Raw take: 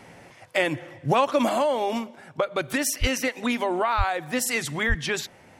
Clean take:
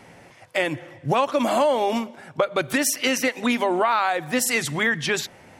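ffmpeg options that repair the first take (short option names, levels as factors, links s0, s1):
-filter_complex "[0:a]asplit=3[s0][s1][s2];[s0]afade=t=out:st=3:d=0.02[s3];[s1]highpass=f=140:w=0.5412,highpass=f=140:w=1.3066,afade=t=in:st=3:d=0.02,afade=t=out:st=3.12:d=0.02[s4];[s2]afade=t=in:st=3.12:d=0.02[s5];[s3][s4][s5]amix=inputs=3:normalize=0,asplit=3[s6][s7][s8];[s6]afade=t=out:st=3.97:d=0.02[s9];[s7]highpass=f=140:w=0.5412,highpass=f=140:w=1.3066,afade=t=in:st=3.97:d=0.02,afade=t=out:st=4.09:d=0.02[s10];[s8]afade=t=in:st=4.09:d=0.02[s11];[s9][s10][s11]amix=inputs=3:normalize=0,asplit=3[s12][s13][s14];[s12]afade=t=out:st=4.88:d=0.02[s15];[s13]highpass=f=140:w=0.5412,highpass=f=140:w=1.3066,afade=t=in:st=4.88:d=0.02,afade=t=out:st=5:d=0.02[s16];[s14]afade=t=in:st=5:d=0.02[s17];[s15][s16][s17]amix=inputs=3:normalize=0,asetnsamples=n=441:p=0,asendcmd='1.49 volume volume 3.5dB',volume=1"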